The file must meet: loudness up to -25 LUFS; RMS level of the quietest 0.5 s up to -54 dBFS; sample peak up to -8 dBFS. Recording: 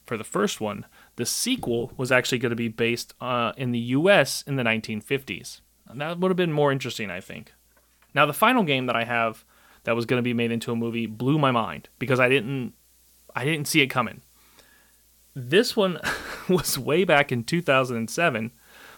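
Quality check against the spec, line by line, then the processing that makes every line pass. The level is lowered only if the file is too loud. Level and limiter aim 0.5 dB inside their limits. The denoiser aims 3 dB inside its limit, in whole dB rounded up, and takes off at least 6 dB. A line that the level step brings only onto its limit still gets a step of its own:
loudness -24.0 LUFS: fail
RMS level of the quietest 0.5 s -61 dBFS: OK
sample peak -4.0 dBFS: fail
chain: gain -1.5 dB; limiter -8.5 dBFS

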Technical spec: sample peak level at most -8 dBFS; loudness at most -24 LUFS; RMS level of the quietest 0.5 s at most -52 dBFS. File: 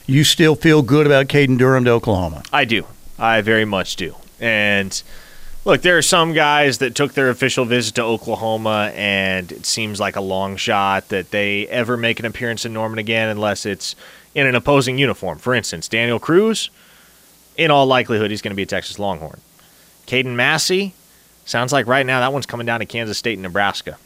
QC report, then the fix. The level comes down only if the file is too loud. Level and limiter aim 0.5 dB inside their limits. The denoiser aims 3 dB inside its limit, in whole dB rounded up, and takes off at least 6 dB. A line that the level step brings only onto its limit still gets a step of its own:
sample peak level -2.0 dBFS: fail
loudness -17.0 LUFS: fail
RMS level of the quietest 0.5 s -50 dBFS: fail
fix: gain -7.5 dB

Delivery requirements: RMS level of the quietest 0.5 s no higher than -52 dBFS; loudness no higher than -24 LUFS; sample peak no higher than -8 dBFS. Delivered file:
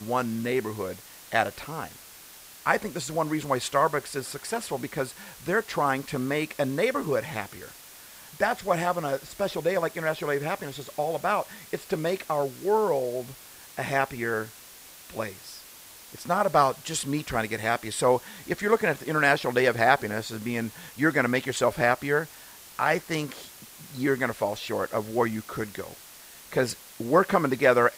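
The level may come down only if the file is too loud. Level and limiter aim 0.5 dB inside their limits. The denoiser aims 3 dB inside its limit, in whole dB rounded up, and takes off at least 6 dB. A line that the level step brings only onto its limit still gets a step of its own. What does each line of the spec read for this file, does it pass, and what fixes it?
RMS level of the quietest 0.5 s -48 dBFS: fail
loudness -27.0 LUFS: OK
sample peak -5.0 dBFS: fail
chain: denoiser 7 dB, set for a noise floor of -48 dBFS; limiter -8.5 dBFS

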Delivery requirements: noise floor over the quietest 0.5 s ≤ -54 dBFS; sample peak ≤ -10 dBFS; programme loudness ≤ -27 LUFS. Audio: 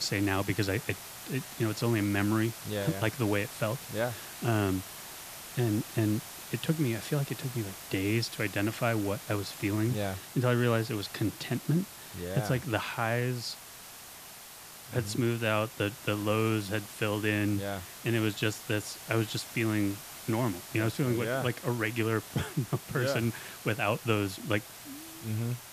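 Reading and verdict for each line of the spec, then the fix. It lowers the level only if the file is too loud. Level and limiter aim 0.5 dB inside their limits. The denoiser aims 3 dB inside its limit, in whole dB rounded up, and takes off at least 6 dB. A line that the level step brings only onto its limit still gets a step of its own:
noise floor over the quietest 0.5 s -48 dBFS: fail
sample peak -13.0 dBFS: OK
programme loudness -31.5 LUFS: OK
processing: denoiser 9 dB, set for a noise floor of -48 dBFS

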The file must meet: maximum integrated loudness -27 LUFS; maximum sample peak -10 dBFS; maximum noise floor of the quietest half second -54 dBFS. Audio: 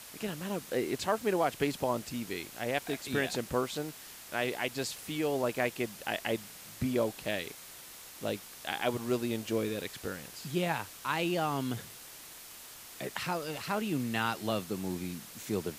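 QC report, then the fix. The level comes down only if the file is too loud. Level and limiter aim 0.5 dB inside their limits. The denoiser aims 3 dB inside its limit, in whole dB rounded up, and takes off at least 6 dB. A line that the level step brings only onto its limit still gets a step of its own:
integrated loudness -34.0 LUFS: OK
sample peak -15.5 dBFS: OK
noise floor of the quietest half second -49 dBFS: fail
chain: denoiser 8 dB, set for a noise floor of -49 dBFS

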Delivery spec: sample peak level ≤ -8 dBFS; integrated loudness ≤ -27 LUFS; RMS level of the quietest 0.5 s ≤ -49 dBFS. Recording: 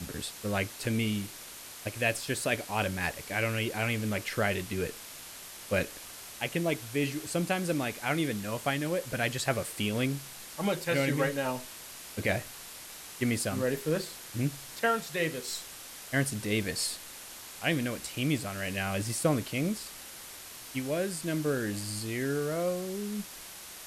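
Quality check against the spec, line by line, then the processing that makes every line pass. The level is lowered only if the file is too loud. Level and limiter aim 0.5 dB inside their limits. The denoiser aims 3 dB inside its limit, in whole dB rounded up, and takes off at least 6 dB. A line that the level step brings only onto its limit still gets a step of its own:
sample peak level -14.0 dBFS: OK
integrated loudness -31.5 LUFS: OK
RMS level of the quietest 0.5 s -46 dBFS: fail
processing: denoiser 6 dB, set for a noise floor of -46 dBFS

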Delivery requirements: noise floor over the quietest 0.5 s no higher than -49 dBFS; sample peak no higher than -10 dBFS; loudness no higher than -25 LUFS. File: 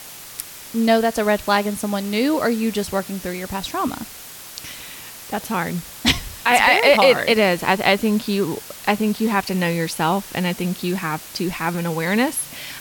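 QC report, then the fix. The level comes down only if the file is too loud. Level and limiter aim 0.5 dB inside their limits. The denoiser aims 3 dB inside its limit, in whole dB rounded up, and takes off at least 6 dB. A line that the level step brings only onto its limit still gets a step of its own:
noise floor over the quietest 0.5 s -38 dBFS: fail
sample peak -3.0 dBFS: fail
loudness -20.0 LUFS: fail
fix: denoiser 9 dB, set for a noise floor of -38 dBFS; gain -5.5 dB; limiter -10.5 dBFS

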